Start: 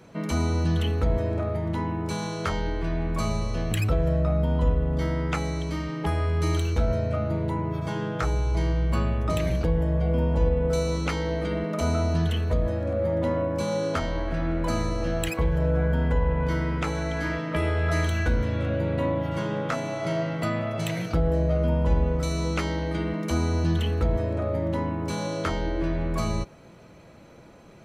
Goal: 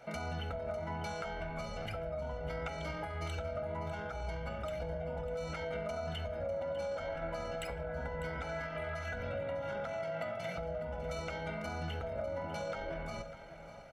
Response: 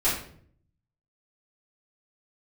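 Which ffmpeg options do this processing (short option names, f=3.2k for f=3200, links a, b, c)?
-filter_complex "[0:a]bass=f=250:g=-14,treble=f=4k:g=-7,aecho=1:1:1.4:0.89,alimiter=limit=-21dB:level=0:latency=1:release=477,acompressor=threshold=-33dB:ratio=10,atempo=2,aecho=1:1:599:0.224,asplit=2[a][b];[1:a]atrim=start_sample=2205[c];[b][c]afir=irnorm=-1:irlink=0,volume=-21.5dB[d];[a][d]amix=inputs=2:normalize=0,aresample=32000,aresample=44100,volume=-3dB"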